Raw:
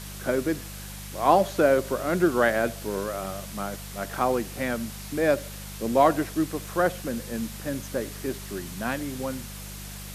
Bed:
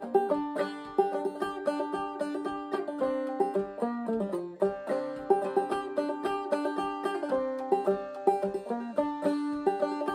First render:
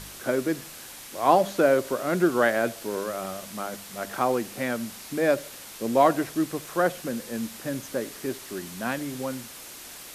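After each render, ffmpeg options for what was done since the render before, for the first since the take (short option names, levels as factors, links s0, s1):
-af "bandreject=f=50:t=h:w=4,bandreject=f=100:t=h:w=4,bandreject=f=150:t=h:w=4,bandreject=f=200:t=h:w=4"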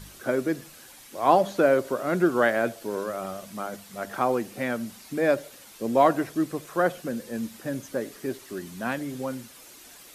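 -af "afftdn=nr=8:nf=-43"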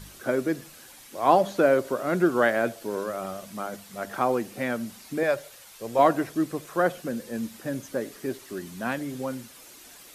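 -filter_complex "[0:a]asettb=1/sr,asplit=3[s0][s1][s2];[s0]atrim=end=5.234[s3];[s1]atrim=start=5.23:end=5.99,asetpts=PTS-STARTPTS,afade=t=in:d=0.004:c=qsin,afade=t=out:st=0.756:d=0.004:c=qsin,equalizer=f=260:t=o:w=1:g=-13.5[s4];[s2]atrim=start=5.986[s5];[s3][s4]acrossfade=d=0.004:c1=hsin:c2=qsin[s6];[s6][s5]acrossfade=d=0.004:c1=qsin:c2=hsin"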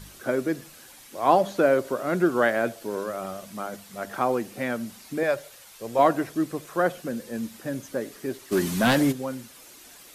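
-filter_complex "[0:a]asplit=3[s0][s1][s2];[s0]afade=t=out:st=8.51:d=0.02[s3];[s1]aeval=exprs='0.188*sin(PI/2*2.82*val(0)/0.188)':c=same,afade=t=in:st=8.51:d=0.02,afade=t=out:st=9.11:d=0.02[s4];[s2]afade=t=in:st=9.11:d=0.02[s5];[s3][s4][s5]amix=inputs=3:normalize=0"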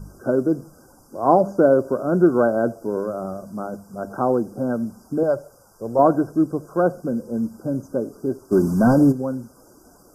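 -af "afftfilt=real='re*(1-between(b*sr/4096,1600,4700))':imag='im*(1-between(b*sr/4096,1600,4700))':win_size=4096:overlap=0.75,tiltshelf=f=1100:g=8.5"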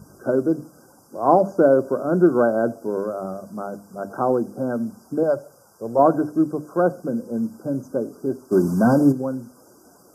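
-af "highpass=110,bandreject=f=50:t=h:w=6,bandreject=f=100:t=h:w=6,bandreject=f=150:t=h:w=6,bandreject=f=200:t=h:w=6,bandreject=f=250:t=h:w=6,bandreject=f=300:t=h:w=6"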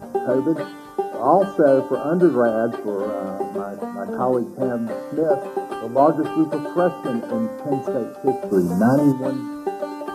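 -filter_complex "[1:a]volume=1.19[s0];[0:a][s0]amix=inputs=2:normalize=0"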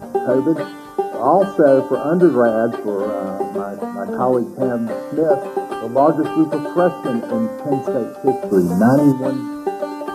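-af "volume=1.5,alimiter=limit=0.794:level=0:latency=1"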